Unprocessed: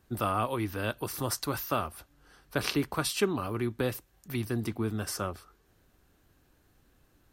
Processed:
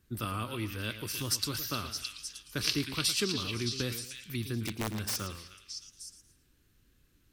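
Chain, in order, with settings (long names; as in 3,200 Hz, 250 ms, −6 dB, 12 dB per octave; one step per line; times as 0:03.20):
parametric band 740 Hz −14.5 dB 1.3 octaves
echo through a band-pass that steps 308 ms, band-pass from 2,800 Hz, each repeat 0.7 octaves, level −2.5 dB
dynamic equaliser 5,000 Hz, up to +8 dB, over −52 dBFS, Q 1.1
0:04.61–0:05.16: wrap-around overflow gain 24 dB
feedback echo with a swinging delay time 113 ms, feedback 31%, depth 164 cents, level −11.5 dB
level −1.5 dB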